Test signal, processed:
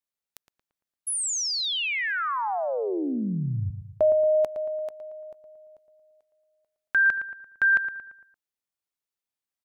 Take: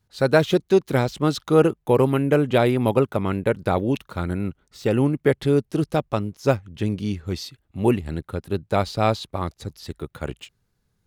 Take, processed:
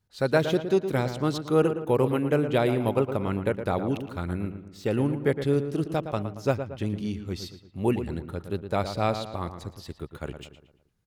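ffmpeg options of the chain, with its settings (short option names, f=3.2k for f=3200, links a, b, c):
-filter_complex "[0:a]asplit=2[a][b];[b]adelay=114,lowpass=f=2.4k:p=1,volume=-9dB,asplit=2[c][d];[d]adelay=114,lowpass=f=2.4k:p=1,volume=0.48,asplit=2[e][f];[f]adelay=114,lowpass=f=2.4k:p=1,volume=0.48,asplit=2[g][h];[h]adelay=114,lowpass=f=2.4k:p=1,volume=0.48,asplit=2[i][j];[j]adelay=114,lowpass=f=2.4k:p=1,volume=0.48[k];[a][c][e][g][i][k]amix=inputs=6:normalize=0,volume=-5.5dB"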